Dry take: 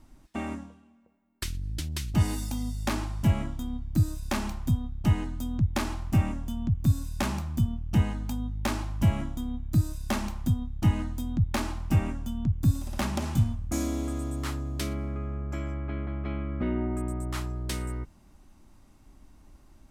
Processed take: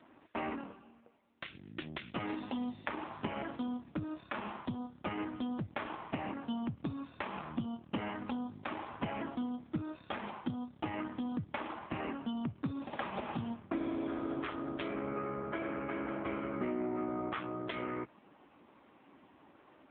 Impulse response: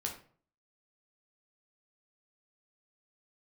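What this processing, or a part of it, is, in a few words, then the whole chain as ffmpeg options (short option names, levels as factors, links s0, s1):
voicemail: -af "highpass=380,lowpass=3200,acompressor=threshold=0.01:ratio=10,volume=2.82" -ar 8000 -c:a libopencore_amrnb -b:a 5900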